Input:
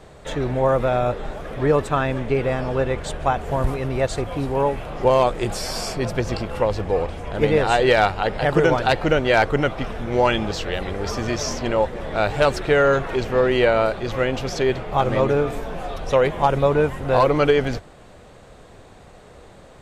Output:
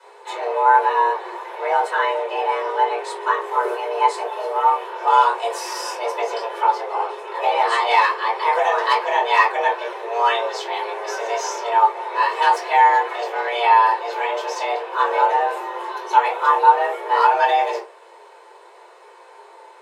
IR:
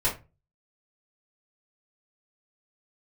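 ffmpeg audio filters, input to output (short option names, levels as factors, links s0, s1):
-filter_complex "[0:a]lowshelf=f=70:g=-11.5,afreqshift=340[s0];[1:a]atrim=start_sample=2205[s1];[s0][s1]afir=irnorm=-1:irlink=0,volume=0.335"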